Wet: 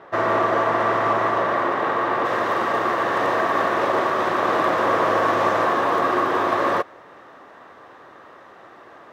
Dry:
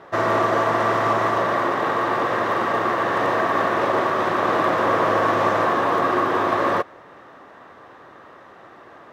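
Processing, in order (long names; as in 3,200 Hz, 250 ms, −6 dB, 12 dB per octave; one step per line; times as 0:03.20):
bass and treble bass −4 dB, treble −7 dB, from 0:02.24 treble +1 dB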